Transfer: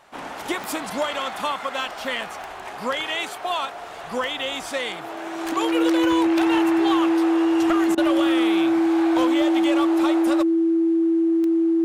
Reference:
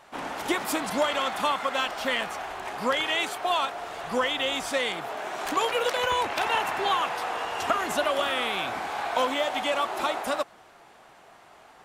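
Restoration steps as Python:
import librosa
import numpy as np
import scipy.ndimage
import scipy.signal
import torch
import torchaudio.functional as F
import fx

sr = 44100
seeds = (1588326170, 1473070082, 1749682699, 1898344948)

y = fx.fix_declip(x, sr, threshold_db=-13.0)
y = fx.fix_declick_ar(y, sr, threshold=10.0)
y = fx.notch(y, sr, hz=330.0, q=30.0)
y = fx.fix_interpolate(y, sr, at_s=(7.95,), length_ms=25.0)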